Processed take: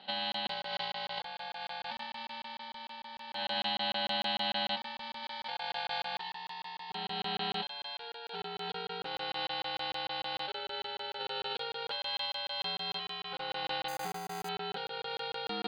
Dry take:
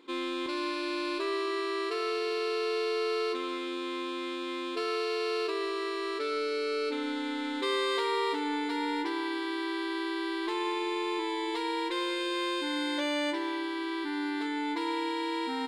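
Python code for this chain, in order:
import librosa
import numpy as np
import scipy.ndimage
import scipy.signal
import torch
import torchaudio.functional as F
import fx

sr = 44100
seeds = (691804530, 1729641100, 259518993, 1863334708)

y = fx.peak_eq(x, sr, hz=630.0, db=-10.0, octaves=0.45, at=(5.23, 6.04))
y = y + 10.0 ** (-24.0 / 20.0) * np.pad(y, (int(298 * sr / 1000.0), 0))[:len(y)]
y = fx.over_compress(y, sr, threshold_db=-35.0, ratio=-0.5)
y = fx.lowpass_res(y, sr, hz=3600.0, q=8.9)
y = y * np.sin(2.0 * np.pi * 470.0 * np.arange(len(y)) / sr)
y = scipy.signal.sosfilt(scipy.signal.butter(6, 230.0, 'highpass', fs=sr, output='sos'), y)
y = fx.tilt_eq(y, sr, slope=-3.0)
y = fx.resample_bad(y, sr, factor=8, down='filtered', up='hold', at=(13.88, 14.49))
y = fx.buffer_crackle(y, sr, first_s=0.32, period_s=0.15, block=1024, kind='zero')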